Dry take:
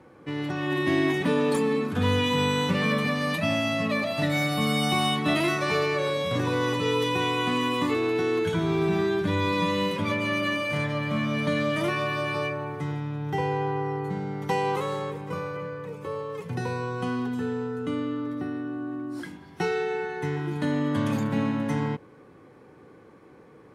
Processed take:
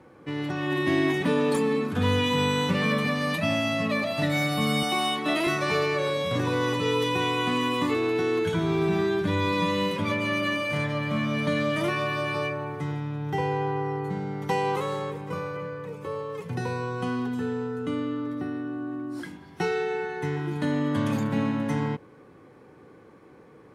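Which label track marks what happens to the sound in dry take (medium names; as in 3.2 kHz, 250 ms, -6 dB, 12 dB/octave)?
4.830000	5.470000	Chebyshev high-pass 330 Hz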